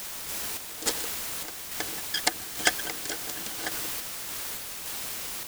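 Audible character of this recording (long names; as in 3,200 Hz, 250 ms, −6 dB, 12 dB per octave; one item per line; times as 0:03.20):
a quantiser's noise floor 6 bits, dither triangular
sample-and-hold tremolo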